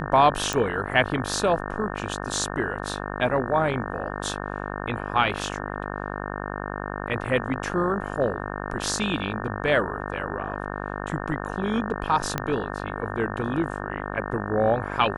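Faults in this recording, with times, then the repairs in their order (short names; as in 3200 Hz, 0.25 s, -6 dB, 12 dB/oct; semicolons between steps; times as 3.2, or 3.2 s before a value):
buzz 50 Hz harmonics 36 -32 dBFS
0.53 pop
12.38 pop -10 dBFS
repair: de-click; de-hum 50 Hz, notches 36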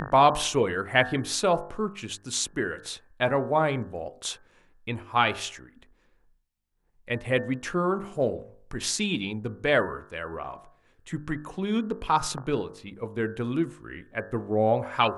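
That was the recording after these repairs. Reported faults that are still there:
0.53 pop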